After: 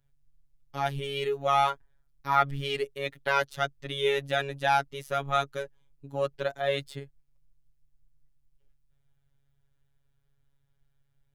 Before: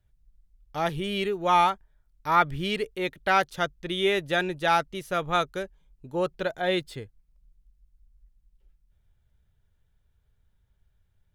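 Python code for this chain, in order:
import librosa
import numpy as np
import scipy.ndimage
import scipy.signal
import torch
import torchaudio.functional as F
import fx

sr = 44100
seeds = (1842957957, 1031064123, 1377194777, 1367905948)

y = fx.robotise(x, sr, hz=139.0)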